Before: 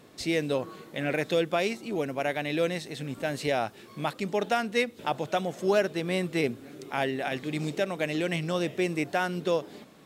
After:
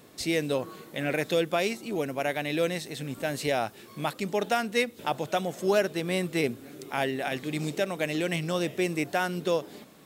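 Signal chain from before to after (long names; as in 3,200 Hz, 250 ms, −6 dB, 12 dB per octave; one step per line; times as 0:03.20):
high-shelf EQ 9,100 Hz +10.5 dB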